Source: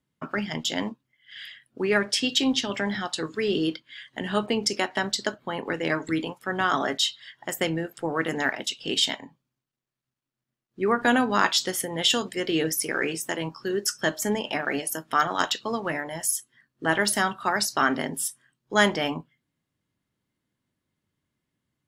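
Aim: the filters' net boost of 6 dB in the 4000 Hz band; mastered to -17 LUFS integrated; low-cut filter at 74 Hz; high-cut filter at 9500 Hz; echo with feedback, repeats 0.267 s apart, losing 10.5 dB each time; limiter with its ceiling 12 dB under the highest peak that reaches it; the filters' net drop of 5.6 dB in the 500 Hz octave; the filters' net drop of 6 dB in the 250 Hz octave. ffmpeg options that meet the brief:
-af "highpass=74,lowpass=9.5k,equalizer=f=250:t=o:g=-6,equalizer=f=500:t=o:g=-5.5,equalizer=f=4k:t=o:g=8,alimiter=limit=-12.5dB:level=0:latency=1,aecho=1:1:267|534|801:0.299|0.0896|0.0269,volume=10dB"

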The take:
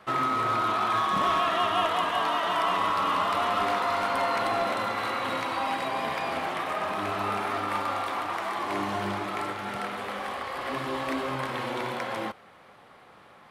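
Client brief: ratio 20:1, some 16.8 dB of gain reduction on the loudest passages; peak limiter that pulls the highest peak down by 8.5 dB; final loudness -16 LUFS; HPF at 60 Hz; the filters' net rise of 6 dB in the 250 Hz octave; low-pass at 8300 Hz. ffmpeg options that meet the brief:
-af "highpass=60,lowpass=8.3k,equalizer=f=250:t=o:g=7.5,acompressor=threshold=-38dB:ratio=20,volume=29dB,alimiter=limit=-7.5dB:level=0:latency=1"

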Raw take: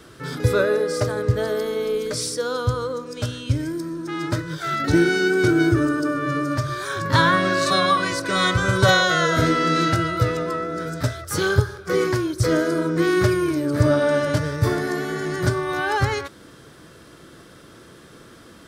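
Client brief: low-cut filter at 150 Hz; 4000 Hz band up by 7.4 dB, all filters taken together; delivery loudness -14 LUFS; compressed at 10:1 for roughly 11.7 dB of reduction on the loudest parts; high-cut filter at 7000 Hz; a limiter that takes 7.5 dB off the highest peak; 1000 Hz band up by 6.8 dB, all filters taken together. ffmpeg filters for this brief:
-af "highpass=150,lowpass=7k,equalizer=f=1k:t=o:g=8,equalizer=f=4k:t=o:g=8.5,acompressor=threshold=-19dB:ratio=10,volume=11dB,alimiter=limit=-5dB:level=0:latency=1"

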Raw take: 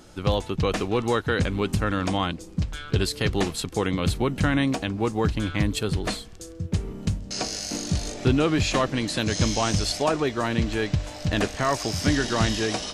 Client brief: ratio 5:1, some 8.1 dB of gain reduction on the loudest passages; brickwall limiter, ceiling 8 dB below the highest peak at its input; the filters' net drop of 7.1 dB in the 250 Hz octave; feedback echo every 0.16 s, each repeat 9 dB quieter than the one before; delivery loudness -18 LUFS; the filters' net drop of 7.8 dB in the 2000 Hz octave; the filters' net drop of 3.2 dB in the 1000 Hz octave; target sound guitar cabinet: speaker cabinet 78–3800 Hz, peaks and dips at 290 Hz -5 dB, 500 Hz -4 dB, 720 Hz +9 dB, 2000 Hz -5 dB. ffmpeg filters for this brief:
-af "equalizer=f=250:t=o:g=-6.5,equalizer=f=1k:t=o:g=-8.5,equalizer=f=2k:t=o:g=-5,acompressor=threshold=-29dB:ratio=5,alimiter=level_in=2.5dB:limit=-24dB:level=0:latency=1,volume=-2.5dB,highpass=78,equalizer=f=290:t=q:w=4:g=-5,equalizer=f=500:t=q:w=4:g=-4,equalizer=f=720:t=q:w=4:g=9,equalizer=f=2k:t=q:w=4:g=-5,lowpass=f=3.8k:w=0.5412,lowpass=f=3.8k:w=1.3066,aecho=1:1:160|320|480|640:0.355|0.124|0.0435|0.0152,volume=20dB"

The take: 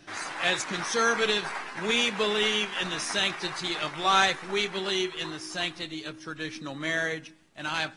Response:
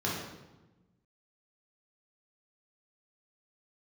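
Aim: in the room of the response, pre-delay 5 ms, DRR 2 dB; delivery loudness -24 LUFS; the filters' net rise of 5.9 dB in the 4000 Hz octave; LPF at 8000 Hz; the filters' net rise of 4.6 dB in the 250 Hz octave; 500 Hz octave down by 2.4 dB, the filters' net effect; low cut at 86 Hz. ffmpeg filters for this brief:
-filter_complex "[0:a]highpass=86,lowpass=8k,equalizer=f=250:t=o:g=8.5,equalizer=f=500:t=o:g=-6.5,equalizer=f=4k:t=o:g=7.5,asplit=2[a][b];[1:a]atrim=start_sample=2205,adelay=5[c];[b][c]afir=irnorm=-1:irlink=0,volume=-10dB[d];[a][d]amix=inputs=2:normalize=0,volume=-2dB"

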